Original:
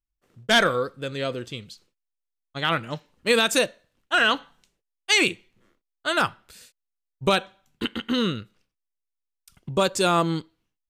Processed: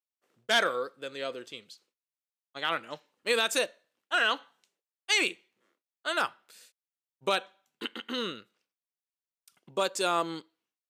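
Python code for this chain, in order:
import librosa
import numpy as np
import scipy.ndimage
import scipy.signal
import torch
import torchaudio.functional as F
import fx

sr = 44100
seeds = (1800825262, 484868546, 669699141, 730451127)

y = scipy.signal.sosfilt(scipy.signal.butter(2, 360.0, 'highpass', fs=sr, output='sos'), x)
y = F.gain(torch.from_numpy(y), -6.0).numpy()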